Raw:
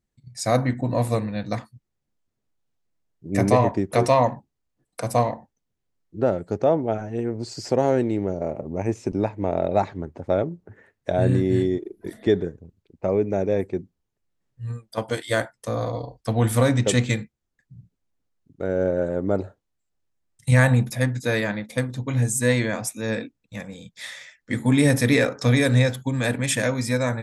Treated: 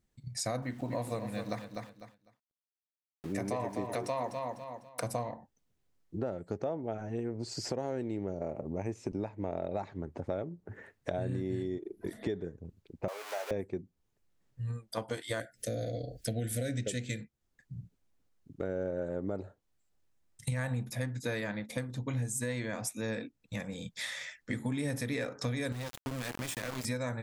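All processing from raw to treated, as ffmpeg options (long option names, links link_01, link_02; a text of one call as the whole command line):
ffmpeg -i in.wav -filter_complex "[0:a]asettb=1/sr,asplit=3[link_01][link_02][link_03];[link_01]atrim=end=0.624[link_04];[link_02]atrim=start=0.62:end=5.01,asetpts=PTS-STARTPTS,afade=type=in:duration=0.004:curve=qsin,afade=type=out:start_time=4.386:duration=0.004:curve=qsin,lowshelf=frequency=140:gain=-9,aeval=exprs='val(0)*gte(abs(val(0)),0.00596)':channel_layout=same,aecho=1:1:250|500|750:0.316|0.0569|0.0102,atrim=end_sample=193599[link_05];[link_03]atrim=start=5.006[link_06];[link_04][link_05]acrossfade=duration=0.004:curve1=hsin:curve2=qsin[link_07];[link_07][link_06]acrossfade=duration=0.004:curve1=qsin:curve2=hsin,asettb=1/sr,asplit=3[link_08][link_09][link_10];[link_08]atrim=end=13.084[link_11];[link_09]atrim=start=13.08:end=13.51,asetpts=PTS-STARTPTS,afade=type=in:duration=0.004:curve=qsin,afade=type=out:start_time=0.426:duration=0.004:curve=qsin,aeval=exprs='val(0)+0.5*0.0355*sgn(val(0))':channel_layout=same,highpass=frequency=750:width=0.5412,highpass=frequency=750:width=1.3066,asplit=2[link_12][link_13];[link_13]adelay=30,volume=-11dB[link_14];[link_12][link_14]amix=inputs=2:normalize=0,atrim=end_sample=18963[link_15];[link_10]atrim=start=13.506[link_16];[link_11][link_15]acrossfade=duration=0.004:curve1=hsin:curve2=qsin[link_17];[link_17][link_16]acrossfade=duration=0.004:curve1=qsin:curve2=hsin,asettb=1/sr,asplit=3[link_18][link_19][link_20];[link_18]atrim=end=15.404[link_21];[link_19]atrim=start=15.4:end=17.21,asetpts=PTS-STARTPTS,afade=type=in:duration=0.004:curve=qsin,afade=type=out:start_time=1.806:duration=0.004:curve=qsin,highshelf=frequency=5700:gain=7,acompressor=mode=upward:threshold=-32dB:ratio=2.5:attack=3.2:release=140:knee=2.83:detection=peak,asuperstop=centerf=1000:order=8:qfactor=1.3[link_22];[link_20]atrim=start=17.206[link_23];[link_21][link_22]acrossfade=duration=0.004:curve1=hsin:curve2=qsin[link_24];[link_24][link_23]acrossfade=duration=0.004:curve1=qsin:curve2=hsin,asettb=1/sr,asplit=3[link_25][link_26][link_27];[link_25]atrim=end=25.724[link_28];[link_26]atrim=start=25.72:end=26.85,asetpts=PTS-STARTPTS,afade=type=in:duration=0.004:curve=qsin,afade=type=out:start_time=1.126:duration=0.004:curve=qsin,acompressor=threshold=-30dB:ratio=3:attack=3.2:release=140:knee=1:detection=peak,aeval=exprs='val(0)*gte(abs(val(0)),0.0335)':channel_layout=same[link_29];[link_27]atrim=start=26.846[link_30];[link_28][link_29]acrossfade=duration=0.004:curve1=hsin:curve2=qsin[link_31];[link_31][link_30]acrossfade=duration=0.004:curve1=qsin:curve2=hsin,alimiter=limit=-12dB:level=0:latency=1:release=400,acompressor=threshold=-39dB:ratio=3,volume=2.5dB" out.wav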